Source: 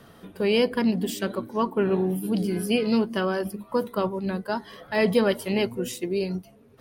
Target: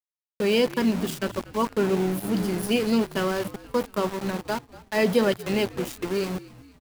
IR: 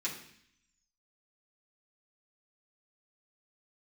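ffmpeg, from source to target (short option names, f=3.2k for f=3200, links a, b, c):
-filter_complex "[0:a]asettb=1/sr,asplit=3[a][b][c];[a]atrim=end=3.164[d];[b]atrim=start=3.16:end=5.37,asetpts=PTS-STARTPTS,afade=t=in:d=0.004:c=qsin,afade=t=out:st=2.206:d=0.004:c=qsin,highpass=f=120:w=0.5412,highpass=f=120:w=1.3066[e];[c]atrim=start=5.366[f];[d][e]acrossfade=d=0.004:c1=hsin:c2=qsin[g];[g][f]acrossfade=d=0.004:c1=qsin:c2=hsin,aeval=exprs='val(0)*gte(abs(val(0)),0.0335)':c=same,asplit=5[h][i][j][k][l];[i]adelay=238,afreqshift=-60,volume=-19dB[m];[j]adelay=476,afreqshift=-120,volume=-25dB[n];[k]adelay=714,afreqshift=-180,volume=-31dB[o];[l]adelay=952,afreqshift=-240,volume=-37.1dB[p];[h][m][n][o][p]amix=inputs=5:normalize=0"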